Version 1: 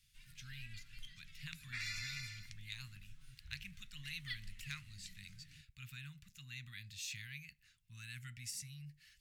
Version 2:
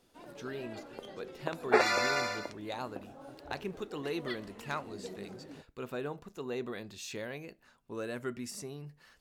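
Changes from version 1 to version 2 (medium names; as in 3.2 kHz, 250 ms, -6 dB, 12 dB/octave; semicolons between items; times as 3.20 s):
first sound: add high-pass 62 Hz; second sound +9.0 dB; master: remove elliptic band-stop 130–2100 Hz, stop band 80 dB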